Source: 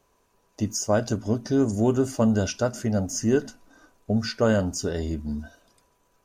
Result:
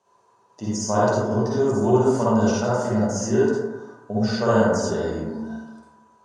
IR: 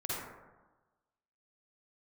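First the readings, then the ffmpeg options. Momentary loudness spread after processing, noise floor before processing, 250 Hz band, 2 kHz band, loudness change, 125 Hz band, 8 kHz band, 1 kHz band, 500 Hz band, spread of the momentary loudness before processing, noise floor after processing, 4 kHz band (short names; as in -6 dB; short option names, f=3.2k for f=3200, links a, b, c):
13 LU, -67 dBFS, +2.0 dB, +4.0 dB, +3.5 dB, +1.5 dB, 0.0 dB, +9.5 dB, +5.0 dB, 8 LU, -60 dBFS, 0.0 dB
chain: -filter_complex "[0:a]highpass=f=120:w=0.5412,highpass=f=120:w=1.3066,equalizer=f=150:t=q:w=4:g=-7,equalizer=f=280:t=q:w=4:g=-7,equalizer=f=940:t=q:w=4:g=9,equalizer=f=2.3k:t=q:w=4:g=-5,lowpass=f=9k:w=0.5412,lowpass=f=9k:w=1.3066[a];[1:a]atrim=start_sample=2205[b];[a][b]afir=irnorm=-1:irlink=0"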